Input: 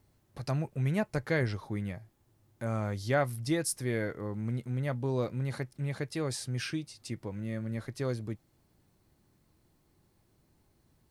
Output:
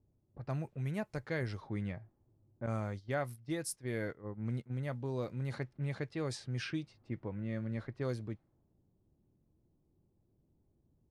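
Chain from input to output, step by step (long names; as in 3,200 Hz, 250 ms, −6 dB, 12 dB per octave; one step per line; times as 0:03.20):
0:02.66–0:04.85: noise gate −35 dBFS, range −12 dB
low-pass that shuts in the quiet parts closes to 480 Hz, open at −27.5 dBFS
speech leveller within 3 dB 0.5 s
level −5 dB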